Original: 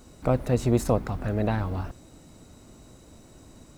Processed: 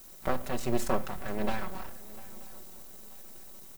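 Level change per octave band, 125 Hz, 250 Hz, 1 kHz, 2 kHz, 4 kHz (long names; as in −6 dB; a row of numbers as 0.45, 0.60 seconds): −15.0, −8.0, −2.0, 0.0, 0.0 decibels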